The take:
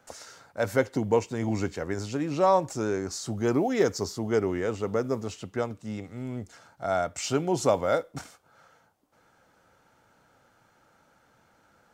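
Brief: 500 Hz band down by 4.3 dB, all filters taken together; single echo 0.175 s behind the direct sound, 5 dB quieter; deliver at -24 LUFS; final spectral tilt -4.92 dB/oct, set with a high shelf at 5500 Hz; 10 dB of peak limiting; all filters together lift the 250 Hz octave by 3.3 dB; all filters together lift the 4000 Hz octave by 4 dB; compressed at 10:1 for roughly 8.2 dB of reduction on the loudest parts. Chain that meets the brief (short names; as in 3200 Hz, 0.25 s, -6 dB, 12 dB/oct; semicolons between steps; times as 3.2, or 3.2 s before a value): bell 250 Hz +6.5 dB; bell 500 Hz -7.5 dB; bell 4000 Hz +9 dB; high shelf 5500 Hz -7.5 dB; compressor 10:1, threshold -27 dBFS; limiter -26.5 dBFS; echo 0.175 s -5 dB; gain +11.5 dB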